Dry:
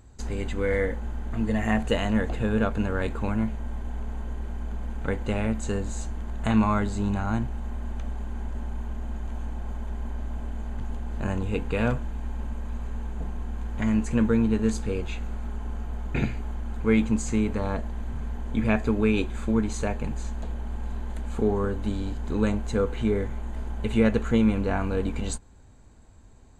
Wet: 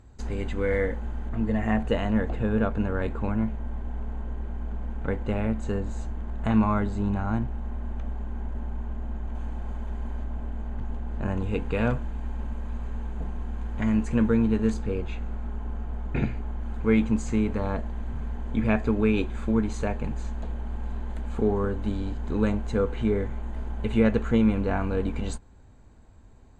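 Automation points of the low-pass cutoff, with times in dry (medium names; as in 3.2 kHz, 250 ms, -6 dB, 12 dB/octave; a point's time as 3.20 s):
low-pass 6 dB/octave
3.6 kHz
from 1.29 s 1.7 kHz
from 9.35 s 3.7 kHz
from 10.24 s 1.9 kHz
from 11.37 s 3.7 kHz
from 14.74 s 1.9 kHz
from 16.61 s 3.3 kHz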